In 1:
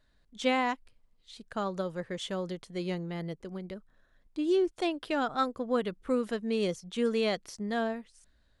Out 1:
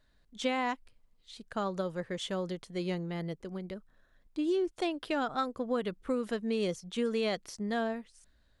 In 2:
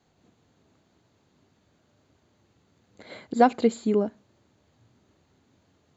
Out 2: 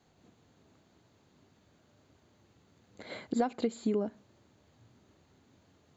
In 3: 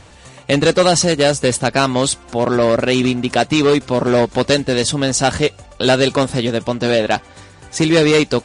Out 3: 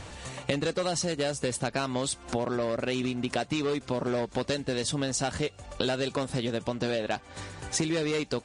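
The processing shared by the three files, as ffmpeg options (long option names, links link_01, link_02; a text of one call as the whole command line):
ffmpeg -i in.wav -af "acompressor=threshold=-26dB:ratio=12" out.wav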